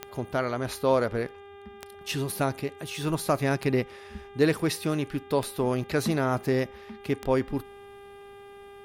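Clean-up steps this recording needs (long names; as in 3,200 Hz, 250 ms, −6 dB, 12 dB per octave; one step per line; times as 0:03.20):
click removal
hum removal 400.8 Hz, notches 9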